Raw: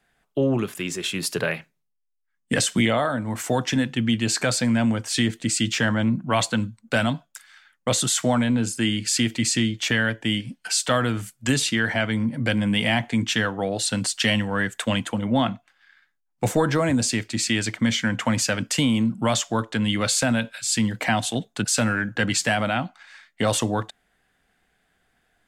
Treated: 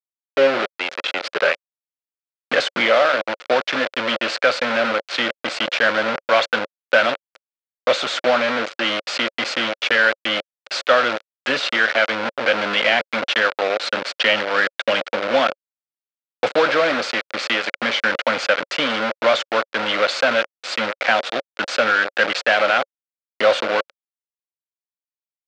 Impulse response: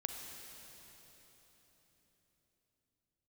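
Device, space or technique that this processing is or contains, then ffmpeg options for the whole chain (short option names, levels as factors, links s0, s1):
hand-held game console: -af "acrusher=bits=3:mix=0:aa=0.000001,highpass=480,equalizer=f=550:t=q:w=4:g=10,equalizer=f=940:t=q:w=4:g=-3,equalizer=f=1400:t=q:w=4:g=7,equalizer=f=2300:t=q:w=4:g=3,lowpass=f=4300:w=0.5412,lowpass=f=4300:w=1.3066,volume=1.5"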